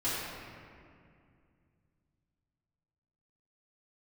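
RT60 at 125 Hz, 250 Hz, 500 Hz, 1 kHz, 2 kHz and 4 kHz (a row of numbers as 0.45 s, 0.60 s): 3.7 s, 3.1 s, 2.4 s, 2.2 s, 2.1 s, 1.4 s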